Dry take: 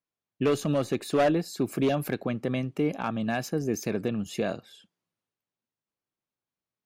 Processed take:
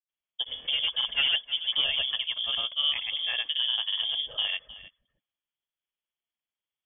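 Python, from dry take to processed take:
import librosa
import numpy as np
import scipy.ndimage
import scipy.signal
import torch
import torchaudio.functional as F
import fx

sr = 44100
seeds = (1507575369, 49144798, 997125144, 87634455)

p1 = fx.octave_divider(x, sr, octaves=2, level_db=-4.0)
p2 = fx.granulator(p1, sr, seeds[0], grain_ms=100.0, per_s=20.0, spray_ms=100.0, spread_st=0)
p3 = p2 + fx.echo_single(p2, sr, ms=312, db=-17.0, dry=0)
p4 = fx.freq_invert(p3, sr, carrier_hz=3400)
y = p4 * librosa.db_to_amplitude(-1.5)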